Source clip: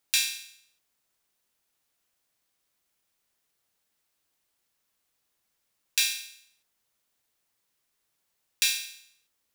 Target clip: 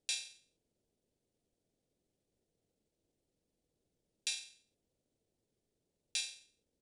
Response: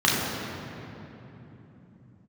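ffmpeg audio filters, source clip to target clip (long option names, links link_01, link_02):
-af "atempo=1.4,firequalizer=gain_entry='entry(460,0);entry(1100,-27);entry(3400,-20)':delay=0.05:min_phase=1,aresample=22050,aresample=44100,volume=8.5dB"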